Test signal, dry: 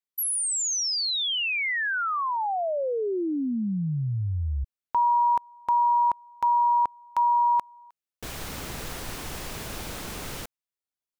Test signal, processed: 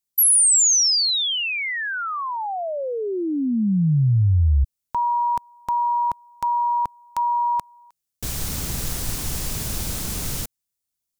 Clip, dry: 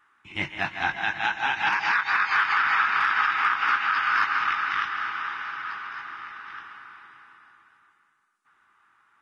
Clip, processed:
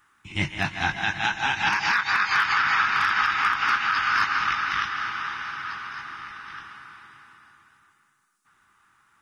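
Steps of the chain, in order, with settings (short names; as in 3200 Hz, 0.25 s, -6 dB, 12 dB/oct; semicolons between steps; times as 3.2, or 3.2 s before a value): tone controls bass +11 dB, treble +12 dB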